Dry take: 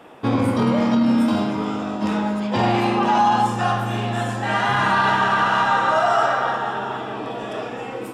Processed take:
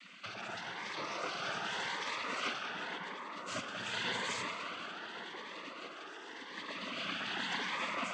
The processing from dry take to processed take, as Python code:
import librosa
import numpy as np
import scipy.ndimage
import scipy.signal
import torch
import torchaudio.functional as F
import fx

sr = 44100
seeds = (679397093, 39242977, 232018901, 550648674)

y = fx.lowpass(x, sr, hz=3700.0, slope=6)
y = fx.vibrato(y, sr, rate_hz=6.9, depth_cents=86.0)
y = scipy.signal.sosfilt(scipy.signal.cheby1(3, 1.0, 330.0, 'highpass', fs=sr, output='sos'), y)
y = fx.over_compress(y, sr, threshold_db=-30.0, ratio=-1.0)
y = fx.spec_gate(y, sr, threshold_db=-15, keep='weak')
y = fx.noise_vocoder(y, sr, seeds[0], bands=16)
y = fx.echo_banded(y, sr, ms=187, feedback_pct=84, hz=1100.0, wet_db=-4)
y = fx.notch_cascade(y, sr, direction='rising', hz=0.88)
y = F.gain(torch.from_numpy(y), 1.0).numpy()